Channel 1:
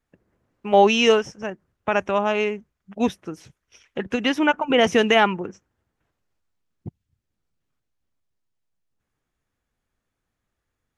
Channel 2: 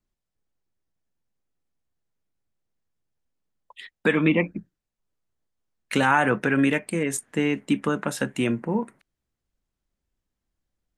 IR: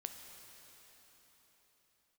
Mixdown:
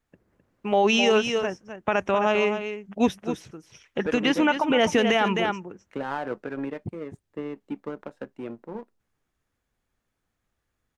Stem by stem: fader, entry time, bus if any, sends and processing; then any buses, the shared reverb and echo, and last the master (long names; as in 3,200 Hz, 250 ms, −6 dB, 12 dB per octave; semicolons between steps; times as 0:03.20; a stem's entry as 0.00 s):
+0.5 dB, 0.00 s, no send, echo send −10 dB, no processing
−3.5 dB, 0.00 s, no send, no echo send, resonant band-pass 500 Hz, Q 1; power curve on the samples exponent 1.4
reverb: not used
echo: single-tap delay 260 ms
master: brickwall limiter −11.5 dBFS, peak gain reduction 7.5 dB